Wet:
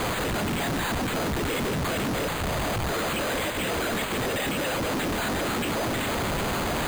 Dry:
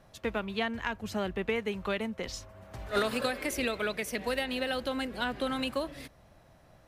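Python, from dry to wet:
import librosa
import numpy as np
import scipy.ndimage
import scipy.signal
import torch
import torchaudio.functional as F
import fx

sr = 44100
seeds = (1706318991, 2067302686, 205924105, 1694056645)

p1 = fx.high_shelf(x, sr, hz=4100.0, db=11.5)
p2 = fx.over_compress(p1, sr, threshold_db=-43.0, ratio=-1.0)
p3 = p1 + (p2 * 10.0 ** (0.5 / 20.0))
p4 = fx.quant_dither(p3, sr, seeds[0], bits=6, dither='triangular')
p5 = fx.whisperise(p4, sr, seeds[1])
p6 = fx.schmitt(p5, sr, flips_db=-32.0)
p7 = fx.air_absorb(p6, sr, metres=95.0)
p8 = np.repeat(p7[::8], 8)[:len(p7)]
y = p8 * 10.0 ** (3.5 / 20.0)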